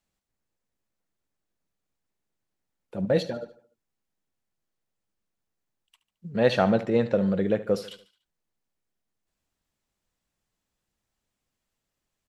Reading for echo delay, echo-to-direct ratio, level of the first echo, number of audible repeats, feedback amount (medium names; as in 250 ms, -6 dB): 73 ms, -14.5 dB, -15.5 dB, 3, 47%